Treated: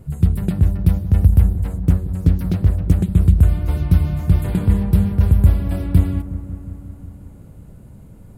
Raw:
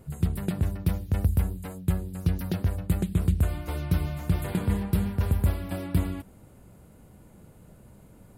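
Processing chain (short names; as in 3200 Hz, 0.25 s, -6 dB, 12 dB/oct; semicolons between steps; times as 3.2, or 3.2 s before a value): low shelf 220 Hz +11.5 dB; dark delay 0.181 s, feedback 74%, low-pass 1300 Hz, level -13 dB; 1.55–3.01 Doppler distortion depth 0.71 ms; gain +1.5 dB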